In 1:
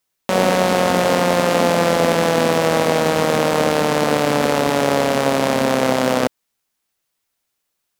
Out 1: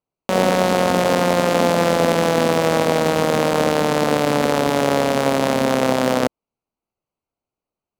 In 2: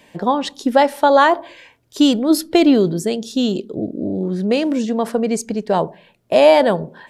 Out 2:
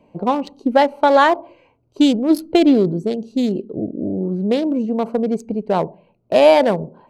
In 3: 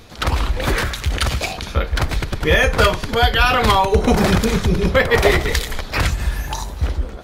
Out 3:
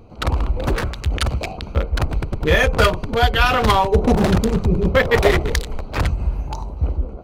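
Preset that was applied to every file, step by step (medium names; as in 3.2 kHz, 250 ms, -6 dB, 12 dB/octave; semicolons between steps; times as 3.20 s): local Wiener filter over 25 samples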